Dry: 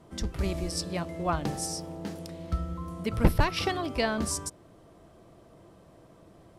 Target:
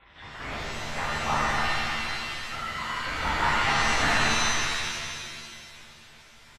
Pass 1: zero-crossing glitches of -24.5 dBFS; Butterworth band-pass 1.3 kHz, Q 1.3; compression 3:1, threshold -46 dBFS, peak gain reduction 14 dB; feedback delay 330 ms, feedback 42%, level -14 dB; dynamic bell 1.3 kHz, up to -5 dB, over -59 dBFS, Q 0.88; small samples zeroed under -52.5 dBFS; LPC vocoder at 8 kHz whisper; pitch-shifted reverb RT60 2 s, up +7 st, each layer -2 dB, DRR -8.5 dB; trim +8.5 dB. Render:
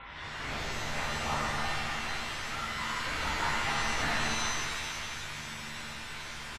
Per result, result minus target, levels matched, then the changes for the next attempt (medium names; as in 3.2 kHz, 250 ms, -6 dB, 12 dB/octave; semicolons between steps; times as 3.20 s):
compression: peak gain reduction +7.5 dB; zero-crossing glitches: distortion +6 dB
change: compression 3:1, threshold -35 dBFS, peak gain reduction 7 dB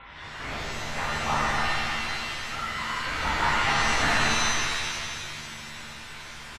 zero-crossing glitches: distortion +6 dB
change: zero-crossing glitches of -31 dBFS